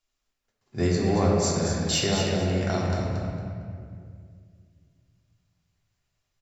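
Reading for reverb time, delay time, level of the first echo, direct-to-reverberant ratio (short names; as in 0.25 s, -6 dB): 2.2 s, 0.228 s, -6.5 dB, -4.5 dB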